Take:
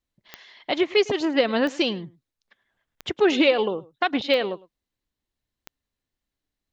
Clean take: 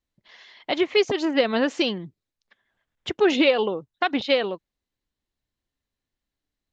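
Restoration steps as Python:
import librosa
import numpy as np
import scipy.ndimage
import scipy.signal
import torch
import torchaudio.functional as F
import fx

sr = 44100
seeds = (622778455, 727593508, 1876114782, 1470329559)

y = fx.fix_declick_ar(x, sr, threshold=10.0)
y = fx.fix_echo_inverse(y, sr, delay_ms=106, level_db=-21.5)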